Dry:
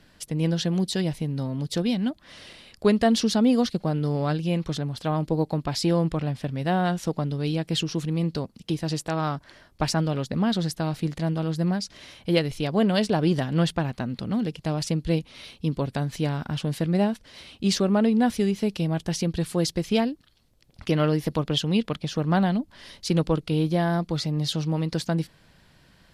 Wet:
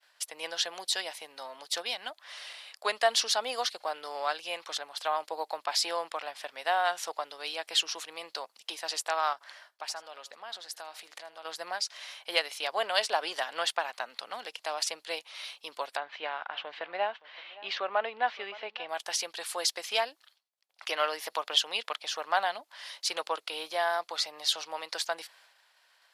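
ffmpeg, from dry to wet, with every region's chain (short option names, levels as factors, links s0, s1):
-filter_complex "[0:a]asettb=1/sr,asplit=3[s0][s1][s2];[s0]atrim=end=9.334[s3];[s1]atrim=start=9.33:end=11.45,asetpts=PTS-STARTPTS,afade=t=in:d=0.004:c=qsin,afade=t=out:st=2.116:d=0.004:c=qsin,acompressor=threshold=0.0141:ratio=2.5:attack=3.2:release=140:knee=1:detection=peak,aecho=1:1:80:0.133,atrim=end_sample=93492[s4];[s2]atrim=start=11.446[s5];[s3][s4]acrossfade=d=0.004:c1=hsin:c2=qsin[s6];[s6][s5]acrossfade=d=0.004:c1=qsin:c2=hsin,asettb=1/sr,asplit=3[s7][s8][s9];[s7]atrim=end=15.974[s10];[s8]atrim=start=15.97:end=18.89,asetpts=PTS-STARTPTS,afade=t=in:d=0.004:c=qsin,afade=t=out:st=2.916:d=0.004:c=qsin,lowpass=f=3100:w=0.5412,lowpass=f=3100:w=1.3066,aecho=1:1:569:0.106,atrim=end_sample=128772[s11];[s9]atrim=start=18.886[s12];[s10][s11]acrossfade=d=0.004:c1=hsin:c2=qsin[s13];[s13][s12]acrossfade=d=0.004:c1=qsin:c2=hsin,agate=range=0.0224:threshold=0.00316:ratio=3:detection=peak,highpass=f=710:w=0.5412,highpass=f=710:w=1.3066,acontrast=70,volume=0.596"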